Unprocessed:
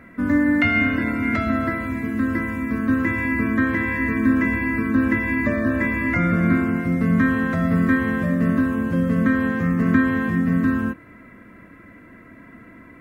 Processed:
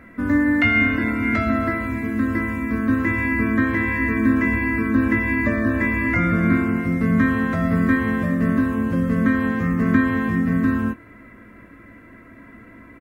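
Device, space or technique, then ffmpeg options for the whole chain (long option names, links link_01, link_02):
low shelf boost with a cut just above: -filter_complex "[0:a]lowshelf=frequency=110:gain=4,equalizer=frequency=160:width_type=o:width=0.54:gain=-5,asplit=2[link_01][link_02];[link_02]adelay=18,volume=-10dB[link_03];[link_01][link_03]amix=inputs=2:normalize=0"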